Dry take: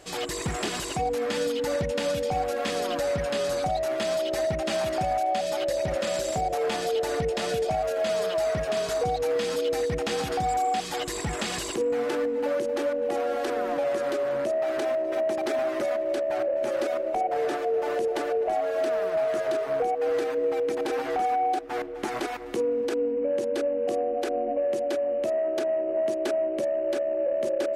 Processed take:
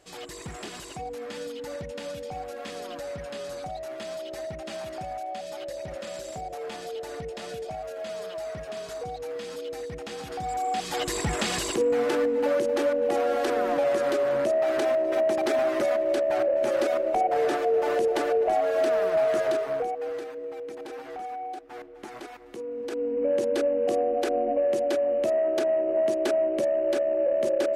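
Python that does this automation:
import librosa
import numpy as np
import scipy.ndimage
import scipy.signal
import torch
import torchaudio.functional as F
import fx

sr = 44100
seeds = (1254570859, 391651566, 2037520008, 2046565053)

y = fx.gain(x, sr, db=fx.line((10.2, -9.0), (11.07, 2.5), (19.44, 2.5), (20.36, -10.5), (22.61, -10.5), (23.28, 2.0)))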